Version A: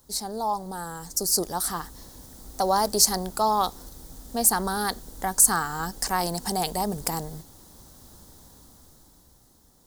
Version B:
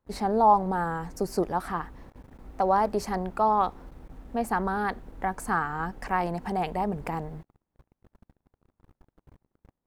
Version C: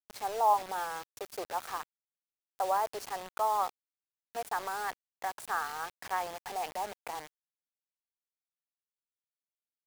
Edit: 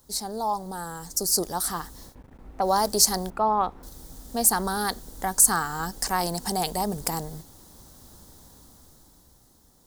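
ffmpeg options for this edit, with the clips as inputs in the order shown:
ffmpeg -i take0.wav -i take1.wav -filter_complex "[1:a]asplit=2[link_01][link_02];[0:a]asplit=3[link_03][link_04][link_05];[link_03]atrim=end=2.16[link_06];[link_01]atrim=start=2.06:end=2.7[link_07];[link_04]atrim=start=2.6:end=3.302[link_08];[link_02]atrim=start=3.298:end=3.832[link_09];[link_05]atrim=start=3.828[link_10];[link_06][link_07]acrossfade=duration=0.1:curve1=tri:curve2=tri[link_11];[link_11][link_08]acrossfade=duration=0.1:curve1=tri:curve2=tri[link_12];[link_12][link_09]acrossfade=duration=0.004:curve1=hsin:curve2=hsin[link_13];[link_13][link_10]acrossfade=duration=0.004:curve1=hsin:curve2=hsin" out.wav

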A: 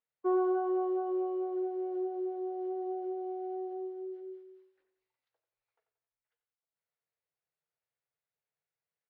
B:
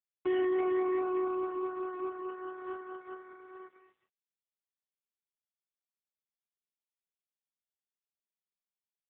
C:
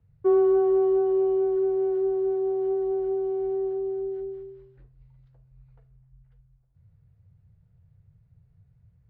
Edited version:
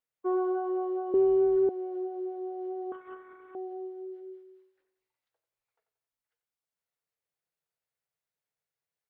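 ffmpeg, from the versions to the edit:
ffmpeg -i take0.wav -i take1.wav -i take2.wav -filter_complex "[0:a]asplit=3[link_01][link_02][link_03];[link_01]atrim=end=1.142[link_04];[2:a]atrim=start=1.138:end=1.692[link_05];[link_02]atrim=start=1.688:end=2.922[link_06];[1:a]atrim=start=2.918:end=3.552[link_07];[link_03]atrim=start=3.548[link_08];[link_04][link_05]acrossfade=duration=0.004:curve1=hsin:curve2=hsin[link_09];[link_09][link_06]acrossfade=duration=0.004:curve1=hsin:curve2=hsin[link_10];[link_10][link_07]acrossfade=duration=0.004:curve1=hsin:curve2=hsin[link_11];[link_11][link_08]acrossfade=duration=0.004:curve1=hsin:curve2=hsin" out.wav

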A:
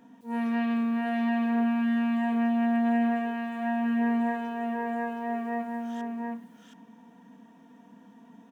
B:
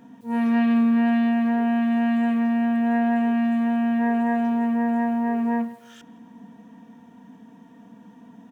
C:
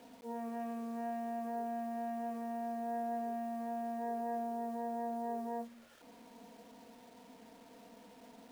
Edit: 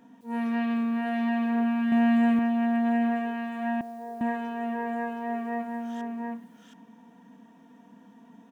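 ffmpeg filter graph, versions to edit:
ffmpeg -i take0.wav -i take1.wav -i take2.wav -filter_complex "[0:a]asplit=3[link_01][link_02][link_03];[link_01]atrim=end=1.922[link_04];[1:a]atrim=start=1.918:end=2.392[link_05];[link_02]atrim=start=2.388:end=3.812[link_06];[2:a]atrim=start=3.808:end=4.212[link_07];[link_03]atrim=start=4.208[link_08];[link_04][link_05]acrossfade=duration=0.004:curve1=hsin:curve2=hsin[link_09];[link_09][link_06]acrossfade=duration=0.004:curve1=hsin:curve2=hsin[link_10];[link_10][link_07]acrossfade=duration=0.004:curve1=hsin:curve2=hsin[link_11];[link_11][link_08]acrossfade=duration=0.004:curve1=hsin:curve2=hsin" out.wav

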